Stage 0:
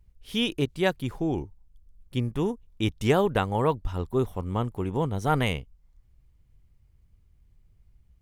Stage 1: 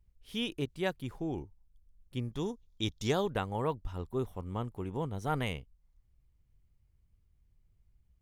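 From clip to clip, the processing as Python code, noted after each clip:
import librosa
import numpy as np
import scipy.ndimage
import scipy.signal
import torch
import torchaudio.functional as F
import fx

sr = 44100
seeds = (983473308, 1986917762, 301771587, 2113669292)

y = fx.spec_box(x, sr, start_s=2.32, length_s=0.98, low_hz=3200.0, high_hz=7300.0, gain_db=9)
y = F.gain(torch.from_numpy(y), -8.5).numpy()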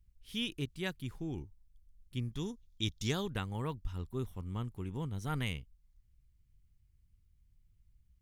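y = fx.peak_eq(x, sr, hz=640.0, db=-12.5, octaves=1.8)
y = F.gain(torch.from_numpy(y), 1.0).numpy()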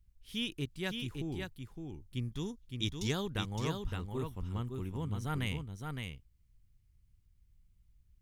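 y = x + 10.0 ** (-5.0 / 20.0) * np.pad(x, (int(564 * sr / 1000.0), 0))[:len(x)]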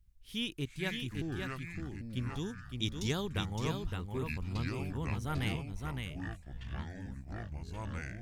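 y = fx.echo_pitch(x, sr, ms=293, semitones=-6, count=2, db_per_echo=-6.0)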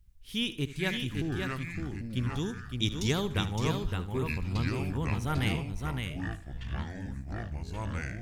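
y = fx.echo_feedback(x, sr, ms=75, feedback_pct=32, wet_db=-15.0)
y = F.gain(torch.from_numpy(y), 5.0).numpy()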